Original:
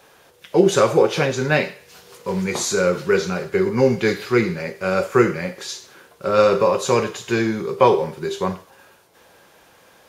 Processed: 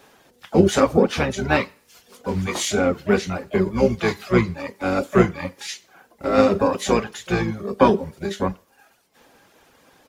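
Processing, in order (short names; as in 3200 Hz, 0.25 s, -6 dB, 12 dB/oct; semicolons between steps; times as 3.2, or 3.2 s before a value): reverb removal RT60 1.1 s; harmoniser -12 st -3 dB, +7 st -14 dB; gain -2 dB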